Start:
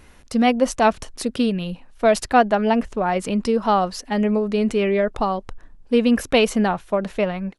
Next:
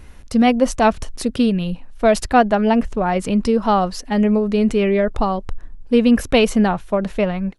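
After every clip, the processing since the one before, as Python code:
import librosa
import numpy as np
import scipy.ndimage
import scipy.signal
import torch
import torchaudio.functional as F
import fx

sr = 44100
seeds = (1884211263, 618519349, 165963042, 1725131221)

y = fx.low_shelf(x, sr, hz=150.0, db=10.0)
y = F.gain(torch.from_numpy(y), 1.0).numpy()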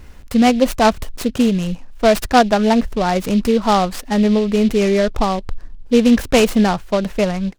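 y = fx.noise_mod_delay(x, sr, seeds[0], noise_hz=3100.0, depth_ms=0.037)
y = F.gain(torch.from_numpy(y), 1.5).numpy()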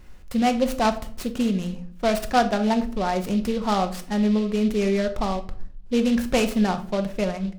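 y = fx.room_shoebox(x, sr, seeds[1], volume_m3=560.0, walls='furnished', distance_m=0.97)
y = F.gain(torch.from_numpy(y), -8.5).numpy()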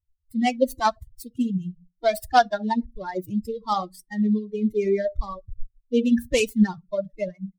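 y = fx.bin_expand(x, sr, power=3.0)
y = F.gain(torch.from_numpy(y), 6.0).numpy()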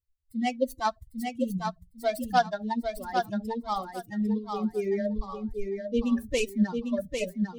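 y = fx.echo_feedback(x, sr, ms=800, feedback_pct=23, wet_db=-5.0)
y = F.gain(torch.from_numpy(y), -6.0).numpy()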